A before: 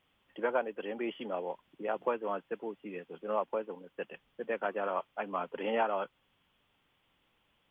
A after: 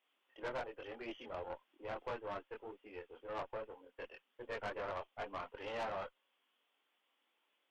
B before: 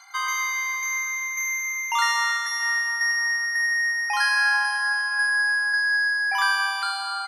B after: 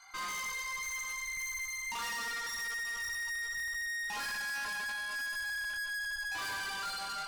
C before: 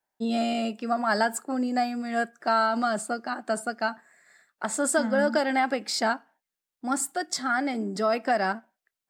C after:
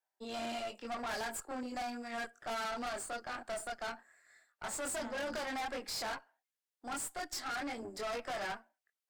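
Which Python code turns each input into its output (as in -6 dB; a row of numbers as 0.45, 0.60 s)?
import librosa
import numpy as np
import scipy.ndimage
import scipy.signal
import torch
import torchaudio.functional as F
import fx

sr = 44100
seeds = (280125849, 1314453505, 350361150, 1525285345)

y = fx.chorus_voices(x, sr, voices=4, hz=0.79, base_ms=23, depth_ms=2.2, mix_pct=45)
y = scipy.signal.sosfilt(scipy.signal.bessel(8, 410.0, 'highpass', norm='mag', fs=sr, output='sos'), y)
y = fx.tube_stage(y, sr, drive_db=36.0, bias=0.65)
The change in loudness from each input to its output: -9.5, -13.5, -13.0 LU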